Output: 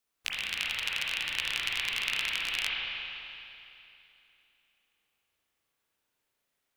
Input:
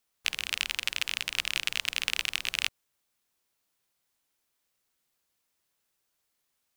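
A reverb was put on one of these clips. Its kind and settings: spring tank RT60 2.9 s, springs 34/56 ms, chirp 75 ms, DRR -5 dB; gain -5 dB

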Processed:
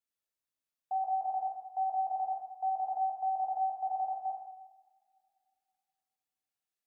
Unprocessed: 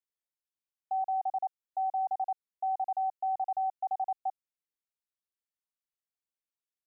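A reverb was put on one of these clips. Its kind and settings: two-slope reverb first 0.87 s, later 2.6 s, from -22 dB, DRR -2 dB; gain -2.5 dB

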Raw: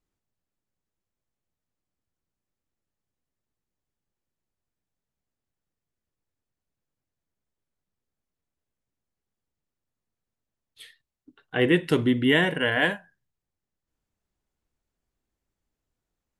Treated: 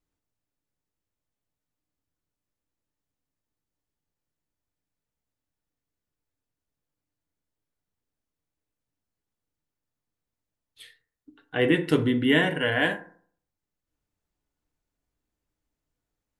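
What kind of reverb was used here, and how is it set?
FDN reverb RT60 0.53 s, low-frequency decay 1×, high-frequency decay 0.4×, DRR 7 dB; gain -1.5 dB

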